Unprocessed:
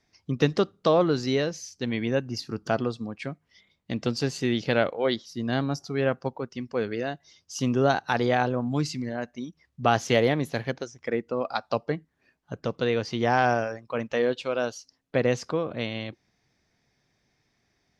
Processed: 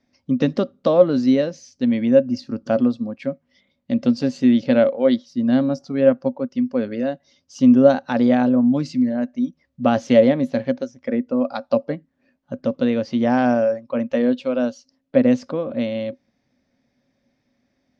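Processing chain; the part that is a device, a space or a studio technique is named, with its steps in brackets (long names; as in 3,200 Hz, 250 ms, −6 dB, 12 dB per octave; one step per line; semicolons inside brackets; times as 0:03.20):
inside a cardboard box (low-pass filter 5,900 Hz 12 dB per octave; hollow resonant body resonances 250/550 Hz, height 18 dB, ringing for 85 ms)
level −2 dB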